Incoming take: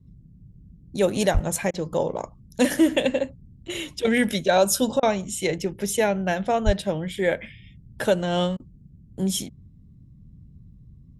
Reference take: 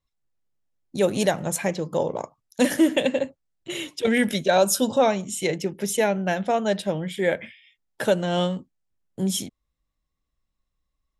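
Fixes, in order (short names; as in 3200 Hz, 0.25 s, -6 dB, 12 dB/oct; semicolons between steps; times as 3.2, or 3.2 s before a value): 1.33–1.45 HPF 140 Hz 24 dB/oct; 6.65–6.77 HPF 140 Hz 24 dB/oct; interpolate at 1.71/5/8.57, 27 ms; noise print and reduce 28 dB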